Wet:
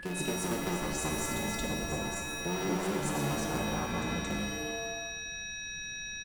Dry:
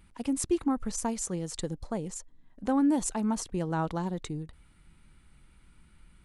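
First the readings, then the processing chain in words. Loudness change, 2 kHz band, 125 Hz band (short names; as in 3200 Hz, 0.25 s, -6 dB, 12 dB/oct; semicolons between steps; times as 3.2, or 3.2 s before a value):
-2.5 dB, +12.0 dB, +1.0 dB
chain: cycle switcher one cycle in 3, inverted; on a send: reverse echo 0.225 s -3.5 dB; on the sum: whine 1700 Hz -36 dBFS; bell 190 Hz +8 dB 0.27 oct; compressor, threshold -28 dBFS, peak gain reduction 10 dB; comb 5.5 ms, depth 35%; shimmer reverb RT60 1.2 s, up +7 st, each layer -2 dB, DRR 1.5 dB; gain -4.5 dB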